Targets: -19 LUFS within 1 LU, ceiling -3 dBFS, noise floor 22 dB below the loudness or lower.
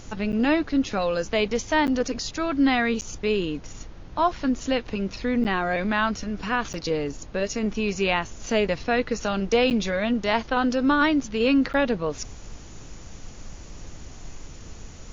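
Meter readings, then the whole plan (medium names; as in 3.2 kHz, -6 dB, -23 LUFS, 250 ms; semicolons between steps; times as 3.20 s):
dropouts 7; longest dropout 9.2 ms; noise floor -42 dBFS; noise floor target -47 dBFS; loudness -24.5 LUFS; peak level -9.5 dBFS; loudness target -19.0 LUFS
-> interpolate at 0.32/1.87/3.01/5.44/6.73/9.70/11.73 s, 9.2 ms; noise print and reduce 6 dB; trim +5.5 dB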